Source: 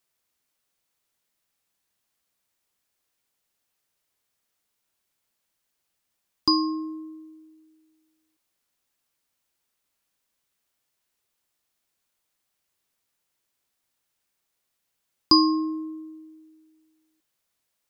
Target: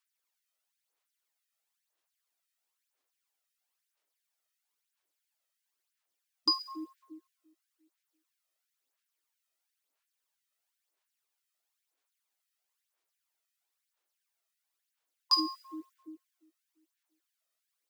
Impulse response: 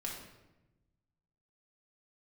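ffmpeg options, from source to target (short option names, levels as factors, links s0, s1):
-af "acrusher=bits=9:mode=log:mix=0:aa=0.000001,aphaser=in_gain=1:out_gain=1:delay=1.6:decay=0.52:speed=1:type=sinusoidal,afftfilt=real='re*gte(b*sr/1024,250*pow(1500/250,0.5+0.5*sin(2*PI*2.9*pts/sr)))':imag='im*gte(b*sr/1024,250*pow(1500/250,0.5+0.5*sin(2*PI*2.9*pts/sr)))':win_size=1024:overlap=0.75,volume=0.398"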